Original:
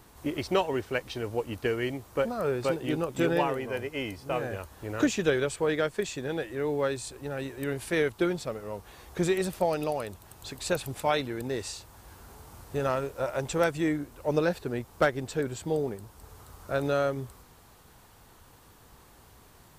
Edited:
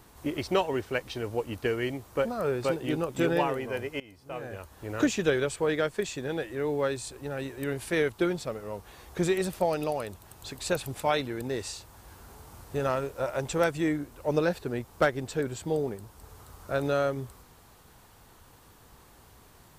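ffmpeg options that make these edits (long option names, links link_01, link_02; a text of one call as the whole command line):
ffmpeg -i in.wav -filter_complex "[0:a]asplit=2[link_01][link_02];[link_01]atrim=end=4,asetpts=PTS-STARTPTS,afade=type=out:start_time=3.996:duration=0.004:curve=hsin:silence=0.0944061[link_03];[link_02]atrim=start=4,asetpts=PTS-STARTPTS,afade=type=in:duration=0.97:silence=0.0944061[link_04];[link_03][link_04]concat=n=2:v=0:a=1" out.wav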